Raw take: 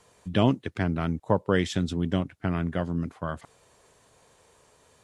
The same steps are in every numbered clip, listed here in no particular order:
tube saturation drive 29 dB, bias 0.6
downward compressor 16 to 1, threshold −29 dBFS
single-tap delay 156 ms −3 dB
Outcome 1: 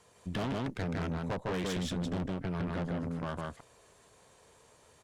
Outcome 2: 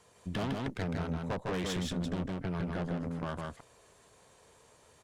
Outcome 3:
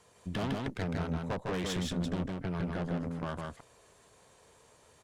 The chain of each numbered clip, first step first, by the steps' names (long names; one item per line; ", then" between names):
single-tap delay, then tube saturation, then downward compressor
tube saturation, then single-tap delay, then downward compressor
tube saturation, then downward compressor, then single-tap delay